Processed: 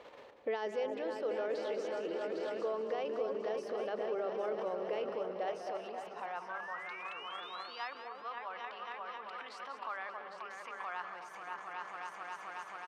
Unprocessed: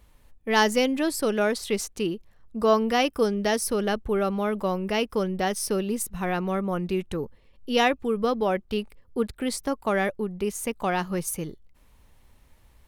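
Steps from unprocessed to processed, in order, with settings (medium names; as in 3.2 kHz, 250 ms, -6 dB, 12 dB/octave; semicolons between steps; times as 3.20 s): bass shelf 130 Hz +7 dB; hum notches 50/100/150/200/250/300/350/400 Hz; transient shaper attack -3 dB, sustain +5 dB; delay with an opening low-pass 268 ms, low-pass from 750 Hz, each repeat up 2 oct, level -6 dB; peak limiter -36 dBFS, peak gain reduction 28 dB; gain riding within 5 dB 0.5 s; painted sound rise, 6.49–7.88 s, 1.5–5.2 kHz -52 dBFS; frequency-shifting echo 191 ms, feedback 46%, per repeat -34 Hz, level -10 dB; high-pass sweep 490 Hz -> 1.1 kHz, 5.23–6.86 s; distance through air 200 m; trim +4.5 dB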